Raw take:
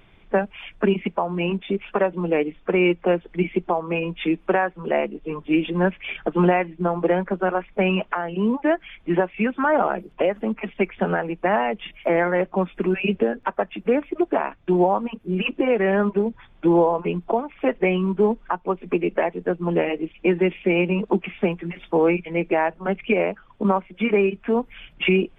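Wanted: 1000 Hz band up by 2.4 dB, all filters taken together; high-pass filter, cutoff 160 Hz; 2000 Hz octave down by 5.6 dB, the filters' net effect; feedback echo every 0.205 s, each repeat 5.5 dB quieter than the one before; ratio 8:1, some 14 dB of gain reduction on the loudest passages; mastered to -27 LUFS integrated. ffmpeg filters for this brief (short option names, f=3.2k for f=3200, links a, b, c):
-af "highpass=160,equalizer=f=1k:t=o:g=5,equalizer=f=2k:t=o:g=-9,acompressor=threshold=-29dB:ratio=8,aecho=1:1:205|410|615|820|1025|1230|1435:0.531|0.281|0.149|0.079|0.0419|0.0222|0.0118,volume=6dB"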